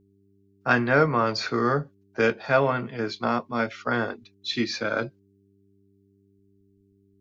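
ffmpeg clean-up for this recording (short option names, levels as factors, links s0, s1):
-af "bandreject=f=98.7:t=h:w=4,bandreject=f=197.4:t=h:w=4,bandreject=f=296.1:t=h:w=4,bandreject=f=394.8:t=h:w=4"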